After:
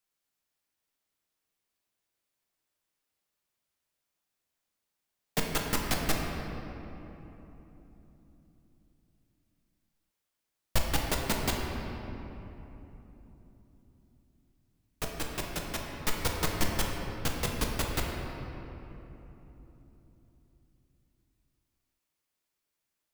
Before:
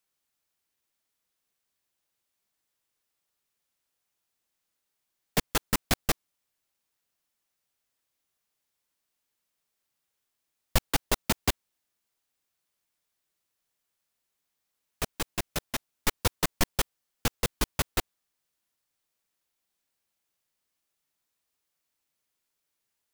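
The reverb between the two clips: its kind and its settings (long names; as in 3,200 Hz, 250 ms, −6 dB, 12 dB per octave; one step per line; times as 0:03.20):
rectangular room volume 220 cubic metres, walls hard, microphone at 0.51 metres
level −4.5 dB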